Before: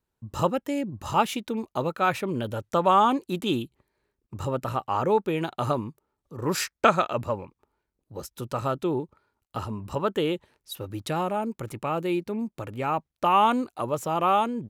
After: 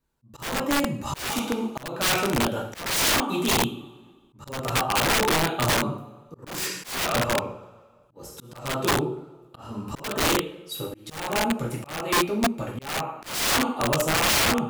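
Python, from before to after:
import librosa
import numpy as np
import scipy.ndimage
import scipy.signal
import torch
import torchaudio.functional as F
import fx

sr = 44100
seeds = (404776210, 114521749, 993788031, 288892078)

y = fx.rev_double_slope(x, sr, seeds[0], early_s=0.6, late_s=1.8, knee_db=-20, drr_db=-3.0)
y = (np.mod(10.0 ** (16.0 / 20.0) * y + 1.0, 2.0) - 1.0) / 10.0 ** (16.0 / 20.0)
y = fx.auto_swell(y, sr, attack_ms=324.0)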